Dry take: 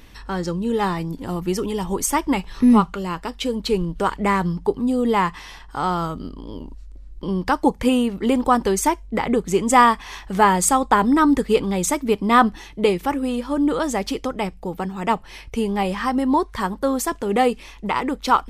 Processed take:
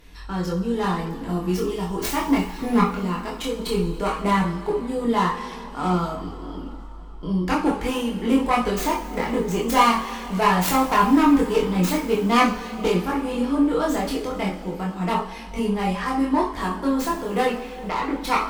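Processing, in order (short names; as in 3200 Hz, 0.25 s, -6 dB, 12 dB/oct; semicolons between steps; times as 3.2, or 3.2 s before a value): tracing distortion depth 0.29 ms; 17.46–18.14 LPF 4200 Hz; one-sided clip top -14 dBFS; two-slope reverb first 0.42 s, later 4 s, from -18 dB, DRR -1 dB; chorus voices 6, 0.31 Hz, delay 24 ms, depth 2.5 ms; gain -2 dB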